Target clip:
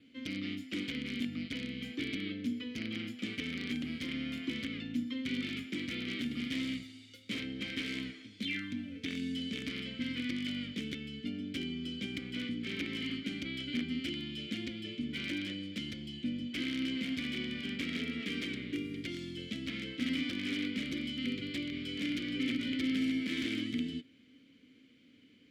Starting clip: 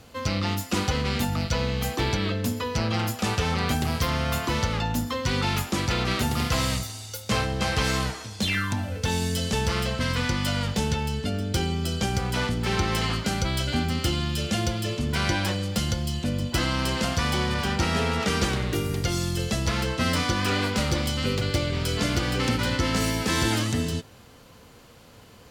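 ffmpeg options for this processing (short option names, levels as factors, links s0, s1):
-filter_complex "[0:a]adynamicequalizer=threshold=0.00224:dfrequency=6000:dqfactor=7.1:tfrequency=6000:tqfactor=7.1:attack=5:release=100:ratio=0.375:range=3:mode=cutabove:tftype=bell,aeval=exprs='(mod(6.31*val(0)+1,2)-1)/6.31':c=same,asplit=3[s0][s1][s2];[s0]bandpass=f=270:t=q:w=8,volume=1[s3];[s1]bandpass=f=2290:t=q:w=8,volume=0.501[s4];[s2]bandpass=f=3010:t=q:w=8,volume=0.355[s5];[s3][s4][s5]amix=inputs=3:normalize=0,volume=1.19"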